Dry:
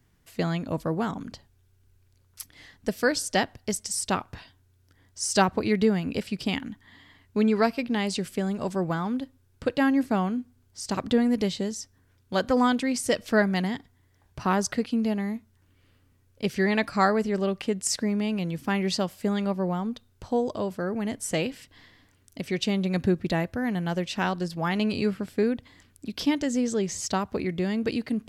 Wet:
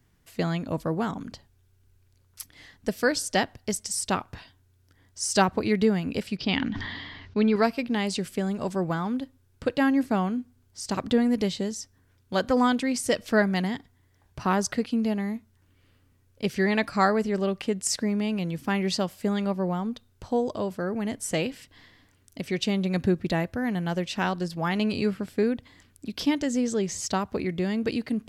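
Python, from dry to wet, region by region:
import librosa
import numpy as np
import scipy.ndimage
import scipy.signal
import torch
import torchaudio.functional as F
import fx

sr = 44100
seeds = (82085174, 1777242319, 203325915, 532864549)

y = fx.chain(x, sr, fx.steep_lowpass(hz=5200.0, slope=36),
    fx.high_shelf(hz=4000.0, db=5.5),
    fx.sustainer(db_per_s=30.0), at=(6.37, 7.56))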